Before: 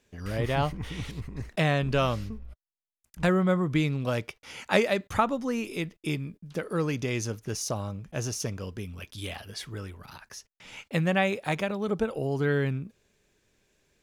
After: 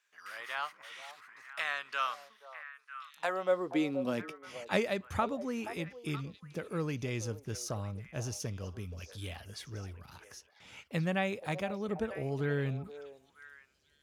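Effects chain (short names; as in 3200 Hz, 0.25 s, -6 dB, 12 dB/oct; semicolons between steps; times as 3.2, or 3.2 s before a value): high-pass sweep 1300 Hz -> 68 Hz, 2.91–4.91; delay with a stepping band-pass 0.476 s, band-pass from 620 Hz, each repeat 1.4 oct, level -8 dB; gain -7.5 dB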